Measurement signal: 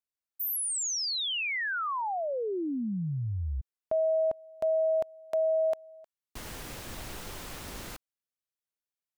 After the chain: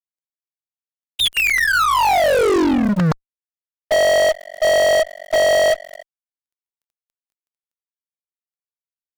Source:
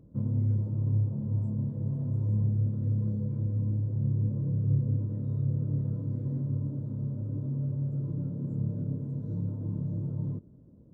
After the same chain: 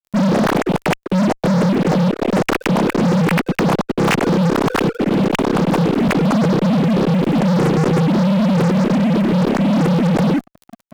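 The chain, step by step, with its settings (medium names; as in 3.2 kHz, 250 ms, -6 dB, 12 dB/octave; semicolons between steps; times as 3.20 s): formants replaced by sine waves; crackle 110 per s -54 dBFS; fuzz box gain 41 dB, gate -48 dBFS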